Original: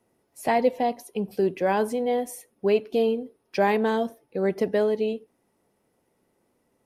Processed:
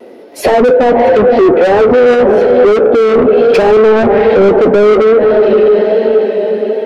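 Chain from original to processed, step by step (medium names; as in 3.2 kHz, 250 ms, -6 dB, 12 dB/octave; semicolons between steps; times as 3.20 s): graphic EQ 125/250/500/1000/4000/8000 Hz -7/+6/+8/-9/+6/-8 dB; echo that smears into a reverb 511 ms, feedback 52%, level -14 dB; low-pass that closes with the level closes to 1 kHz, closed at -17 dBFS; bass shelf 110 Hz -9.5 dB; overdrive pedal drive 34 dB, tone 1 kHz, clips at -4.5 dBFS; vibrato 1.2 Hz 33 cents; flange 0.74 Hz, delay 7.5 ms, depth 4.6 ms, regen -54%; loudness maximiser +16 dB; trim -1 dB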